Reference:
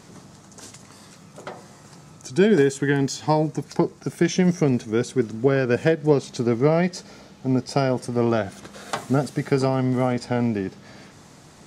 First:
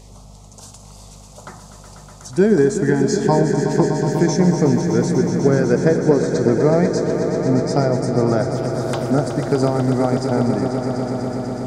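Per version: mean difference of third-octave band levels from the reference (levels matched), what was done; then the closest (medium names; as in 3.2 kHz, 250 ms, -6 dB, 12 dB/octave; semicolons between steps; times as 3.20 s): 7.0 dB: touch-sensitive phaser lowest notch 220 Hz, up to 2.9 kHz, full sweep at -22.5 dBFS; hum 50 Hz, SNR 23 dB; echo with a slow build-up 123 ms, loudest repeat 5, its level -10.5 dB; trim +3 dB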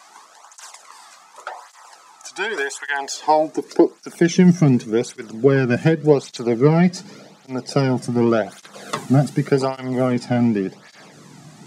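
4.5 dB: bass shelf 320 Hz -3.5 dB; high-pass sweep 930 Hz -> 140 Hz, 2.87–4.44 s; cancelling through-zero flanger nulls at 0.87 Hz, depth 2.3 ms; trim +5.5 dB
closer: second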